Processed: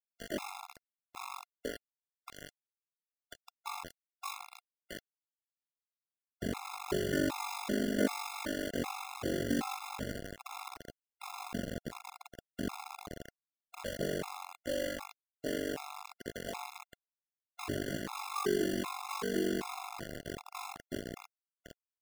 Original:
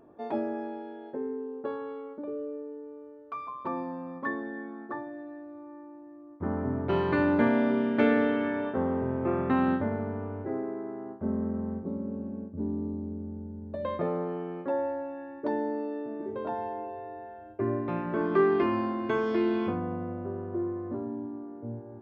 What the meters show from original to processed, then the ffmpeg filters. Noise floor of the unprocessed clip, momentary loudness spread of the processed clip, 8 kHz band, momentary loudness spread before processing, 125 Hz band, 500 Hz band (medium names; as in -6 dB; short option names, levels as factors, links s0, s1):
-47 dBFS, 18 LU, no reading, 16 LU, -9.0 dB, -9.0 dB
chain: -af "acrusher=bits=4:mix=0:aa=0.000001,aeval=exprs='val(0)*sin(2*PI*24*n/s)':c=same,afftfilt=real='re*gt(sin(2*PI*1.3*pts/sr)*(1-2*mod(floor(b*sr/1024/690),2)),0)':imag='im*gt(sin(2*PI*1.3*pts/sr)*(1-2*mod(floor(b*sr/1024/690),2)),0)':win_size=1024:overlap=0.75,volume=0.708"